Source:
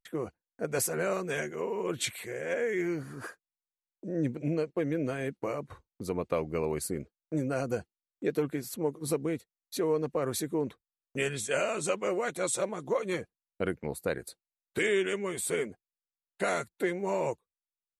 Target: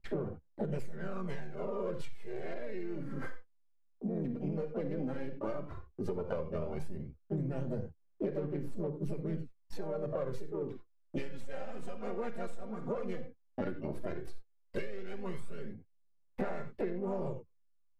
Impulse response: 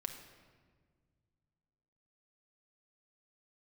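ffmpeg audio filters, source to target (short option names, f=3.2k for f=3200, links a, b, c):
-filter_complex "[0:a]acrossover=split=1600[a][b];[b]aeval=exprs='max(val(0),0)':c=same[c];[a][c]amix=inputs=2:normalize=0,asplit=2[d][e];[e]asetrate=55563,aresample=44100,atempo=0.793701,volume=-6dB[f];[d][f]amix=inputs=2:normalize=0,lowshelf=f=240:g=9[g];[1:a]atrim=start_sample=2205,atrim=end_sample=4410[h];[g][h]afir=irnorm=-1:irlink=0,aphaser=in_gain=1:out_gain=1:delay=4.3:decay=0.52:speed=0.12:type=sinusoidal,aemphasis=mode=reproduction:type=50fm,asplit=2[i][j];[j]asoftclip=type=tanh:threshold=-26.5dB,volume=-8dB[k];[i][k]amix=inputs=2:normalize=0,acompressor=threshold=-31dB:ratio=12,volume=-1dB"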